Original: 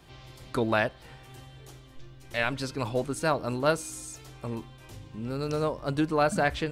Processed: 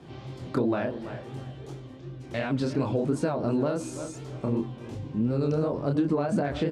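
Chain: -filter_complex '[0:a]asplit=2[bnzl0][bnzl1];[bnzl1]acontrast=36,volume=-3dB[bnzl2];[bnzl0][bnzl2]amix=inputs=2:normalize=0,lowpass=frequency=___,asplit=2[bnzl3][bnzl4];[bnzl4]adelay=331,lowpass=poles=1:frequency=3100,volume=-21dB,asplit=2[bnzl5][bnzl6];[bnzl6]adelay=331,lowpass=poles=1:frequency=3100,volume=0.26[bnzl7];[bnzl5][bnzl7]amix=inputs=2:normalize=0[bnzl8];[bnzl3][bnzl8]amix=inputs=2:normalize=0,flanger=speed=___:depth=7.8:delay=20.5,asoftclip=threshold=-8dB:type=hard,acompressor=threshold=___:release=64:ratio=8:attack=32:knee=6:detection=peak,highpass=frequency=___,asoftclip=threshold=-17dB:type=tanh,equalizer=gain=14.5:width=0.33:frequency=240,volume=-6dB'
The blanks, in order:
7900, 2.8, -32dB, 62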